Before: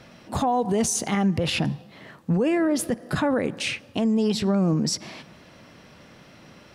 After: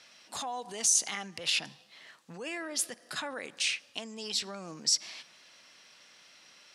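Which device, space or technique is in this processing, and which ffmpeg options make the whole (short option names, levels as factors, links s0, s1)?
piezo pickup straight into a mixer: -af "lowpass=6800,aderivative,volume=1.88"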